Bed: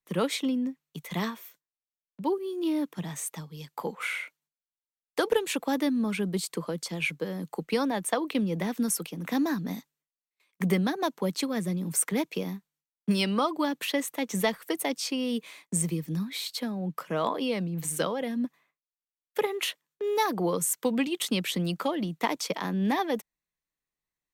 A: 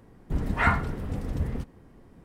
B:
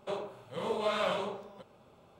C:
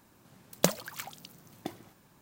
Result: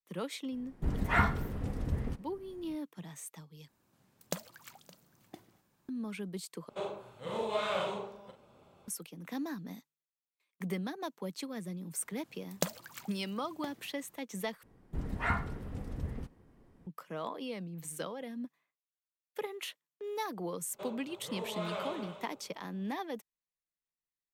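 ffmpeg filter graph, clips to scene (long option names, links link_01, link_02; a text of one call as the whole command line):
ffmpeg -i bed.wav -i cue0.wav -i cue1.wav -i cue2.wav -filter_complex "[1:a]asplit=2[link_01][link_02];[3:a]asplit=2[link_03][link_04];[2:a]asplit=2[link_05][link_06];[0:a]volume=-11dB[link_07];[link_03]aecho=1:1:567:0.0841[link_08];[link_05]asplit=2[link_09][link_10];[link_10]adelay=40,volume=-7dB[link_11];[link_09][link_11]amix=inputs=2:normalize=0[link_12];[link_06]aecho=1:1:289:0.335[link_13];[link_07]asplit=4[link_14][link_15][link_16][link_17];[link_14]atrim=end=3.684[link_18];[link_08]atrim=end=2.21,asetpts=PTS-STARTPTS,volume=-12dB[link_19];[link_15]atrim=start=5.886:end=6.694[link_20];[link_12]atrim=end=2.19,asetpts=PTS-STARTPTS,volume=-2.5dB[link_21];[link_16]atrim=start=8.876:end=14.634[link_22];[link_02]atrim=end=2.24,asetpts=PTS-STARTPTS,volume=-9dB[link_23];[link_17]atrim=start=16.866[link_24];[link_01]atrim=end=2.24,asetpts=PTS-STARTPTS,volume=-4.5dB,afade=type=in:duration=0.004:curve=hsin,afade=type=out:start_time=2.236:duration=0.004:curve=hsin,adelay=520[link_25];[link_04]atrim=end=2.21,asetpts=PTS-STARTPTS,volume=-7.5dB,afade=type=in:duration=0.004:curve=hsin,afade=type=out:start_time=2.206:duration=0.004:curve=hsin,adelay=11980[link_26];[link_13]atrim=end=2.19,asetpts=PTS-STARTPTS,volume=-8dB,afade=type=in:duration=0.004:curve=hsin,afade=type=out:start_time=2.186:duration=0.004:curve=hsin,adelay=20720[link_27];[link_18][link_19]acrossfade=duration=0.004:curve1=hsin:curve2=hsin[link_28];[link_28][link_20]acrossfade=duration=0.004:curve1=hsin:curve2=hsin[link_29];[link_29][link_21]acrossfade=duration=0.004:curve1=hsin:curve2=hsin[link_30];[link_30][link_22]acrossfade=duration=0.004:curve1=hsin:curve2=hsin[link_31];[link_31][link_23]acrossfade=duration=0.004:curve1=hsin:curve2=hsin[link_32];[link_32][link_24]acrossfade=duration=0.004:curve1=hsin:curve2=hsin[link_33];[link_33][link_25][link_26][link_27]amix=inputs=4:normalize=0" out.wav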